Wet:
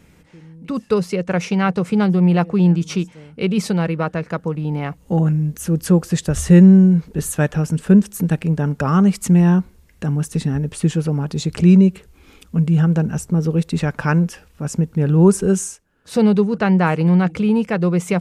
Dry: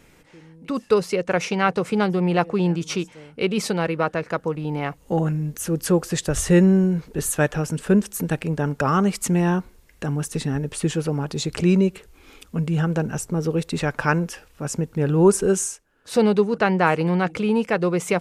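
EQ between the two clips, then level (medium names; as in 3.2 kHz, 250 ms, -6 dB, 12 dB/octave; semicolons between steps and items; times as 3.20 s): peaking EQ 73 Hz +10.5 dB 0.57 oct; peaking EQ 180 Hz +9 dB 0.84 oct; -1.0 dB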